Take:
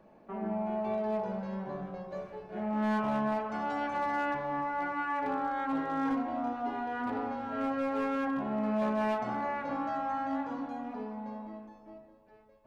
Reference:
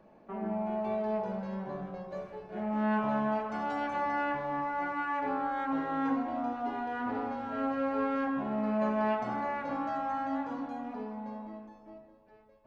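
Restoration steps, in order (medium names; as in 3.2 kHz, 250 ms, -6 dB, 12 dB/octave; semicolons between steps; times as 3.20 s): clip repair -25 dBFS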